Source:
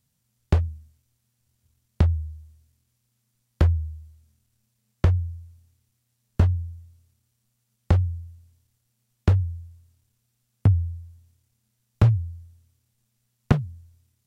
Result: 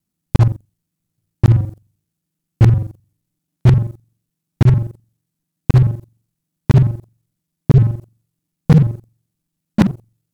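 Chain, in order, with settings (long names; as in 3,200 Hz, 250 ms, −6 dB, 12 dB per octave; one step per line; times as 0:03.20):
reversed piece by piece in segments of 60 ms
leveller curve on the samples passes 3
change of speed 1.38×
level +1.5 dB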